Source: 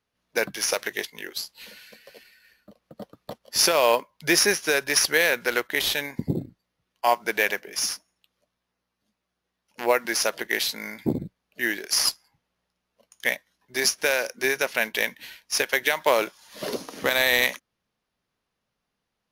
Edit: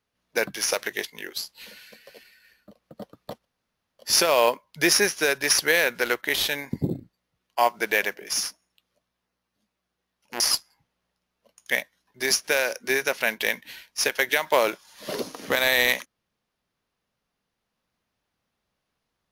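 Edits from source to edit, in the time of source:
0:03.45: splice in room tone 0.54 s
0:09.86–0:11.94: remove

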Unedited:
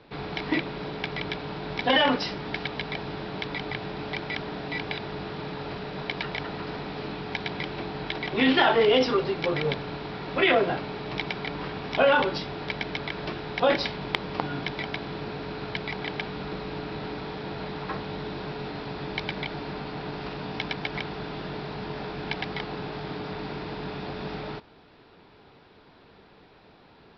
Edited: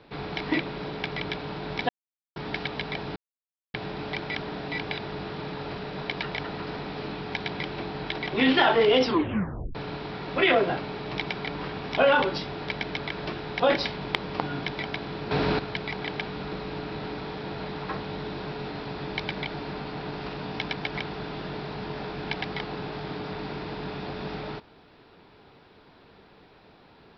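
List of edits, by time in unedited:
0:01.89–0:02.36: silence
0:03.16–0:03.74: silence
0:09.06: tape stop 0.69 s
0:15.31–0:15.59: clip gain +10.5 dB

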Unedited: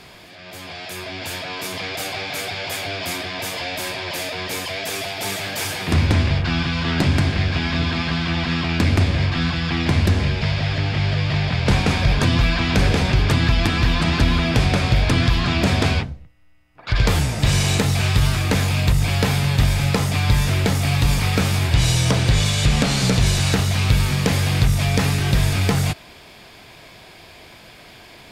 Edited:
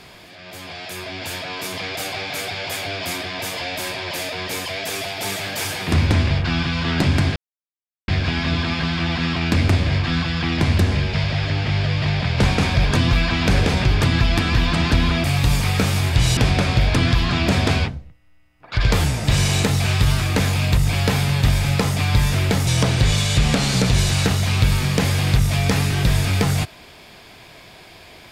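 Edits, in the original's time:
0:07.36: splice in silence 0.72 s
0:20.82–0:21.95: move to 0:14.52

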